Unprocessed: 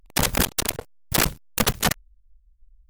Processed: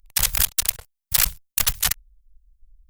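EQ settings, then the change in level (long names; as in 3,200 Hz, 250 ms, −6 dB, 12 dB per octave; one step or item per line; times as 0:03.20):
guitar amp tone stack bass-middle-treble 10-0-10
low-shelf EQ 160 Hz +5.5 dB
high-shelf EQ 8,400 Hz +6 dB
+1.5 dB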